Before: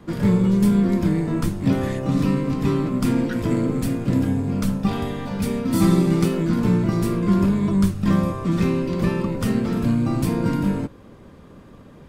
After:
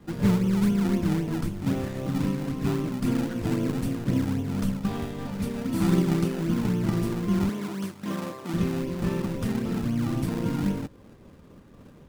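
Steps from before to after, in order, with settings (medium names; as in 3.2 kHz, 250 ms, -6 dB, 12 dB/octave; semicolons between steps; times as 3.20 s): in parallel at -3.5 dB: decimation with a swept rate 28×, swing 100% 3.8 Hz; 7.49–8.54 s: on the sum: high-pass 280 Hz 12 dB/octave; random flutter of the level, depth 50%; trim -7 dB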